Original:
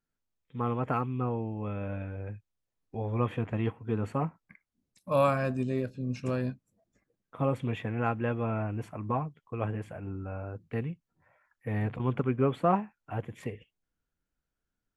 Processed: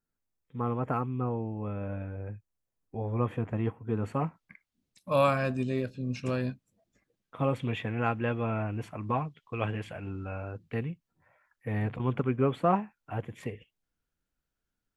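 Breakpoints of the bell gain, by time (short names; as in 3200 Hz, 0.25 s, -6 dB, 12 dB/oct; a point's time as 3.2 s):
bell 3400 Hz 1.6 oct
3.87 s -6.5 dB
4.28 s +5.5 dB
8.9 s +5.5 dB
9.39 s +13 dB
10.32 s +13 dB
10.9 s +1.5 dB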